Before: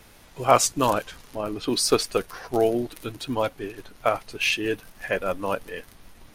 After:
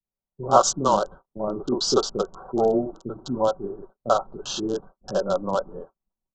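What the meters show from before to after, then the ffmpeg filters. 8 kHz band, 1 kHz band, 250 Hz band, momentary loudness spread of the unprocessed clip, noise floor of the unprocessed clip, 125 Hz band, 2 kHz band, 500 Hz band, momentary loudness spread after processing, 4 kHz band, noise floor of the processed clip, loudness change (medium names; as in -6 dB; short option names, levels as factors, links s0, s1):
-1.5 dB, +2.0 dB, +1.0 dB, 14 LU, -52 dBFS, -0.5 dB, -13.0 dB, +1.5 dB, 14 LU, -2.0 dB, under -85 dBFS, +0.5 dB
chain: -filter_complex "[0:a]agate=range=0.00794:threshold=0.0112:ratio=16:detection=peak,equalizer=f=2800:t=o:w=0.53:g=-10.5,aecho=1:1:5.3:0.44,acrossover=split=120|1200[s0][s1][s2];[s0]alimiter=level_in=5.96:limit=0.0631:level=0:latency=1,volume=0.168[s3];[s1]dynaudnorm=f=200:g=3:m=1.58[s4];[s2]acrusher=bits=4:mix=0:aa=0.000001[s5];[s3][s4][s5]amix=inputs=3:normalize=0,acrossover=split=370[s6][s7];[s7]adelay=40[s8];[s6][s8]amix=inputs=2:normalize=0,aresample=16000,aresample=44100,asuperstop=centerf=2100:order=8:qfactor=1.4"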